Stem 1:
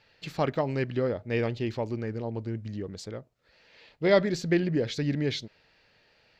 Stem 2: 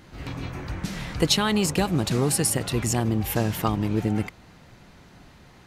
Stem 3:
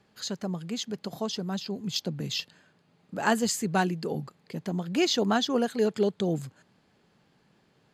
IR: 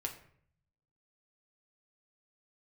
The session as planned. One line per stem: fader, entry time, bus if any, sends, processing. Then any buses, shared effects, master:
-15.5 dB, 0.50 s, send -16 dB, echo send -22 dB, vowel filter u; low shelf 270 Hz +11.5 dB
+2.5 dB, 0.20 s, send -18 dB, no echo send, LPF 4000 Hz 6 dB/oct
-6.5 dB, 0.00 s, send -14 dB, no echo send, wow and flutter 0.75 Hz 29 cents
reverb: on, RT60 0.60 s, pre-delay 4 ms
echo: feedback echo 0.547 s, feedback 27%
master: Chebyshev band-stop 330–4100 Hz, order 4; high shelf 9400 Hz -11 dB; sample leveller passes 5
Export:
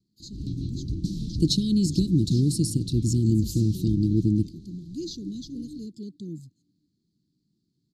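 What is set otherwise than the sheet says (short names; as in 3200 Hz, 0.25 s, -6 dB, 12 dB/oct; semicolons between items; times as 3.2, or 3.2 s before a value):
stem 3: send off; master: missing sample leveller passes 5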